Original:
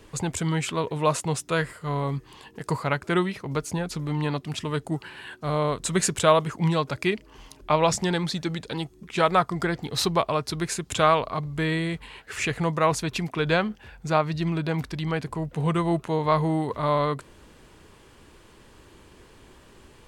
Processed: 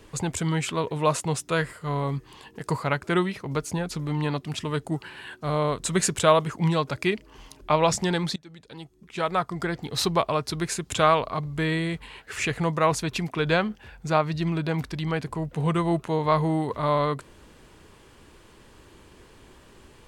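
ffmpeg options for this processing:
-filter_complex "[0:a]asplit=2[a][b];[a]atrim=end=8.36,asetpts=PTS-STARTPTS,afade=t=out:st=8.356:d=0.004:c=hsin:silence=0.0630957[c];[b]atrim=start=8.36,asetpts=PTS-STARTPTS,afade=t=in:d=1.76:silence=0.0630957[d];[c][d]concat=n=2:v=0:a=1"

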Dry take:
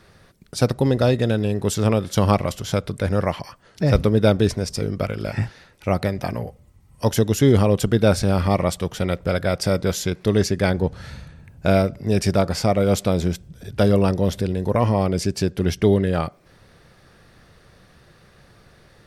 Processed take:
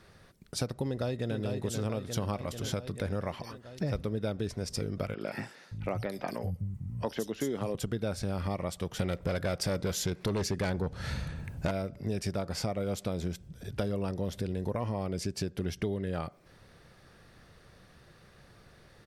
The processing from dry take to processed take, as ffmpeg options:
-filter_complex "[0:a]asplit=2[a][b];[b]afade=t=in:st=0.86:d=0.01,afade=t=out:st=1.37:d=0.01,aecho=0:1:440|880|1320|1760|2200|2640|3080|3520|3960:0.446684|0.290344|0.188724|0.12267|0.0797358|0.0518283|0.0336884|0.0218974|0.0142333[c];[a][c]amix=inputs=2:normalize=0,asettb=1/sr,asplit=3[d][e][f];[d]atrim=end=5.144[g];[e]atrim=start=5.14:end=7.75,asetpts=PTS-STARTPTS,afade=t=in:d=0.004:c=qsin,afade=t=out:st=2.606:d=0.004:c=qsin,acrossover=split=170|3900[h][i][j];[j]adelay=70[k];[h]adelay=570[l];[l][i][k]amix=inputs=3:normalize=0,atrim=end_sample=115101[m];[f]atrim=start=7.746[n];[g][m]acrossfade=d=0.004:c1=hsin:c2=qsin[o];[o][n]acrossfade=d=0.004:c1=qsin:c2=hsin,asettb=1/sr,asplit=3[p][q][r];[p]atrim=end=8.994[s];[q]atrim=start=8.99:end=11.71,asetpts=PTS-STARTPTS,afade=t=in:d=0.004:c=qsin,afade=t=out:st=2.716:d=0.004:c=qsin,aeval=exprs='0.473*sin(PI/2*2*val(0)/0.473)':c=same[t];[r]atrim=start=11.706[u];[s][t]acrossfade=d=0.004:c1=hsin:c2=qsin[v];[v][u]acrossfade=d=0.004:c1=qsin:c2=hsin,acompressor=threshold=-24dB:ratio=6,volume=-5.5dB"

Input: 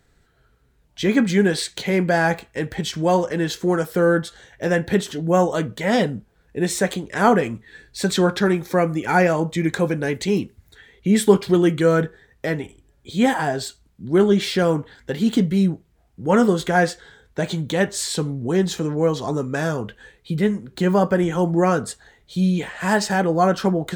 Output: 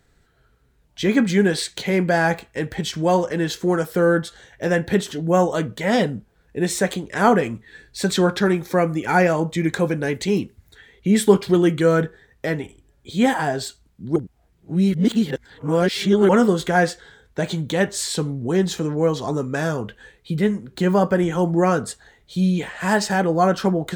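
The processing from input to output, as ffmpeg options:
-filter_complex "[0:a]asplit=3[a][b][c];[a]atrim=end=14.162[d];[b]atrim=start=14.158:end=16.292,asetpts=PTS-STARTPTS,areverse[e];[c]atrim=start=16.288[f];[d][e]acrossfade=d=0.004:c1=hsin:c2=hsin[g];[g][f]acrossfade=d=0.004:c1=hsin:c2=hsin"

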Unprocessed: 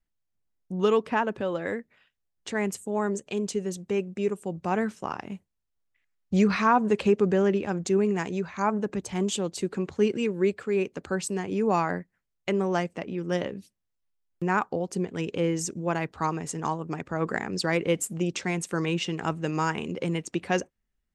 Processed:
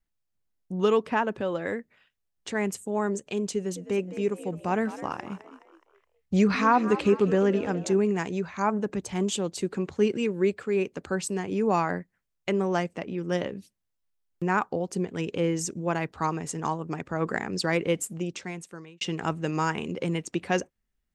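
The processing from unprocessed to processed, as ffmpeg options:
-filter_complex "[0:a]asettb=1/sr,asplit=3[a][b][c];[a]atrim=end=3.504[d];[b]atrim=start=3.5:end=7.96,asetpts=PTS-STARTPTS,afade=t=in:d=0.004:c=qsin,afade=t=out:st=4.456:d=0.004:c=qsin,asplit=5[e][f][g][h][i];[f]adelay=210,afreqshift=68,volume=-14dB[j];[g]adelay=420,afreqshift=136,volume=-21.3dB[k];[h]adelay=630,afreqshift=204,volume=-28.7dB[l];[i]adelay=840,afreqshift=272,volume=-36dB[m];[e][j][k][l][m]amix=inputs=5:normalize=0,atrim=end_sample=196686[n];[c]atrim=start=7.956[o];[d][n]acrossfade=d=0.004:c1=hsin:c2=qsin[p];[p][o]acrossfade=d=0.004:c1=qsin:c2=hsin,asplit=2[q][r];[q]atrim=end=19.01,asetpts=PTS-STARTPTS,afade=t=out:st=17.8:d=1.21[s];[r]atrim=start=19.01,asetpts=PTS-STARTPTS,afade=t=in:d=0.004:c=hsin[t];[s][t]concat=n=2:v=0:a=1"

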